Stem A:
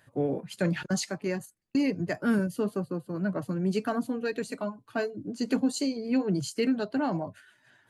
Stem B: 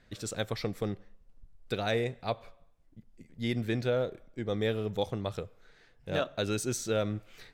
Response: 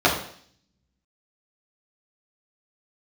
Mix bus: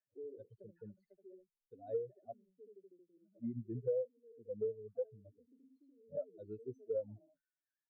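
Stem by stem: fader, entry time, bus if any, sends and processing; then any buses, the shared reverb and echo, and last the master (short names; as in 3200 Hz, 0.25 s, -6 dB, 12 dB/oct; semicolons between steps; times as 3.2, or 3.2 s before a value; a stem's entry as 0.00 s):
-14.0 dB, 0.00 s, no send, echo send -13 dB, spectral contrast raised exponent 3.1; ladder band-pass 440 Hz, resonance 65%; auto duck -11 dB, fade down 1.70 s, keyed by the second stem
-0.5 dB, 0.00 s, no send, no echo send, spectral expander 4:1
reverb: off
echo: echo 76 ms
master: compressor 3:1, threshold -36 dBFS, peak gain reduction 12 dB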